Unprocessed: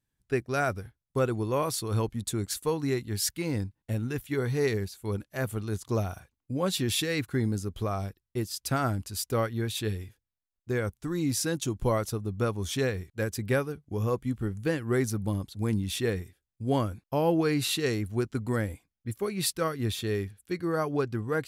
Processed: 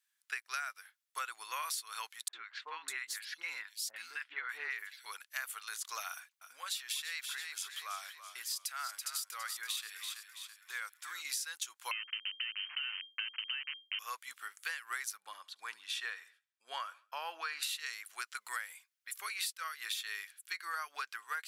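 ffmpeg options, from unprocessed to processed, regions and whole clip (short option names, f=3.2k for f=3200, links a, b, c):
-filter_complex "[0:a]asettb=1/sr,asplit=3[a][b][c];[a]atrim=end=2.284[d];[b]atrim=start=2.28:end=5.06,asetpts=PTS-STARTPTS,afade=t=in:d=0.004:c=qsin,afade=t=out:st=2.776:d=0.004:c=qsin,bass=f=250:g=14,treble=f=4k:g=-13,acrossover=split=950|3700[e][f][g];[f]adelay=50[h];[g]adelay=600[i];[e][h][i]amix=inputs=3:normalize=0,atrim=end_sample=122598[j];[c]atrim=start=5.056[k];[d][j]acrossfade=d=0.004:c1=hsin:c2=qsin[l];[l][k]acrossfade=d=0.004:c1=qsin:c2=hsin,asettb=1/sr,asplit=3[m][n][o];[m]atrim=end=6.084[p];[n]atrim=start=6.08:end=11.25,asetpts=PTS-STARTPTS,afade=t=in:d=0.004:c=qsin,afade=t=out:st=5.166:d=0.004:c=qsin,acompressor=threshold=-30dB:ratio=5:attack=3.2:release=140:knee=1:detection=peak,asplit=6[q][r][s][t][u][v];[r]adelay=331,afreqshift=-46,volume=-11dB[w];[s]adelay=662,afreqshift=-92,volume=-17dB[x];[t]adelay=993,afreqshift=-138,volume=-23dB[y];[u]adelay=1324,afreqshift=-184,volume=-29.1dB[z];[v]adelay=1655,afreqshift=-230,volume=-35.1dB[aa];[q][w][x][y][z][aa]amix=inputs=6:normalize=0,atrim=end_sample=227997[ab];[o]atrim=start=11.246[ac];[p][ab]acrossfade=d=0.004:c1=hsin:c2=qsin[ad];[ad][ac]acrossfade=d=0.004:c1=qsin:c2=hsin,asettb=1/sr,asplit=3[ae][af][ag];[ae]atrim=end=11.914[ah];[af]atrim=start=11.91:end=13.99,asetpts=PTS-STARTPTS,afade=t=in:d=0.004:c=qsin,afade=t=out:st=2.076:d=0.004:c=qsin,aeval=exprs='val(0)*gte(abs(val(0)),0.0335)':c=same,acompressor=threshold=-32dB:ratio=4:attack=3.2:release=140:knee=1:detection=peak,lowpass=f=2.7k:t=q:w=0.5098,lowpass=f=2.7k:t=q:w=0.6013,lowpass=f=2.7k:t=q:w=0.9,lowpass=f=2.7k:t=q:w=2.563,afreqshift=-3200[ai];[ag]atrim=start=13.986[aj];[ah][ai]acrossfade=d=0.004:c1=hsin:c2=qsin[ak];[ak][aj]acrossfade=d=0.004:c1=qsin:c2=hsin,asettb=1/sr,asplit=3[al][am][an];[al]atrim=end=15.204[ao];[am]atrim=start=15.2:end=17.63,asetpts=PTS-STARTPTS,afade=t=in:d=0.004:c=qsin,afade=t=out:st=2.426:d=0.004:c=qsin,aemphasis=mode=reproduction:type=75fm,bandreject=f=2.1k:w=9.8,aecho=1:1:72|144|216:0.0708|0.0304|0.0131,atrim=end_sample=107163[ap];[an]atrim=start=17.626[aq];[ao][ap]acrossfade=d=0.004:c1=hsin:c2=qsin[ar];[ar][aq]acrossfade=d=0.004:c1=qsin:c2=hsin,highpass=f=1.3k:w=0.5412,highpass=f=1.3k:w=1.3066,acompressor=threshold=-41dB:ratio=16,volume=6dB"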